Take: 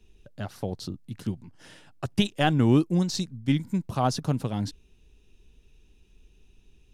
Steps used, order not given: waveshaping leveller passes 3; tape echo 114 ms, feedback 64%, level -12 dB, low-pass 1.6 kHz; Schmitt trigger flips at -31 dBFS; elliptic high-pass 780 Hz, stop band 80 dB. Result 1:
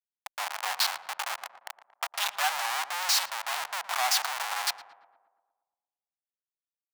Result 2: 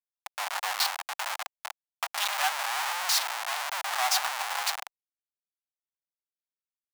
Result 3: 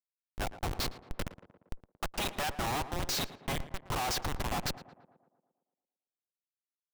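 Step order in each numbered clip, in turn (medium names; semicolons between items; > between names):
waveshaping leveller > Schmitt trigger > elliptic high-pass > tape echo; tape echo > waveshaping leveller > Schmitt trigger > elliptic high-pass; waveshaping leveller > elliptic high-pass > Schmitt trigger > tape echo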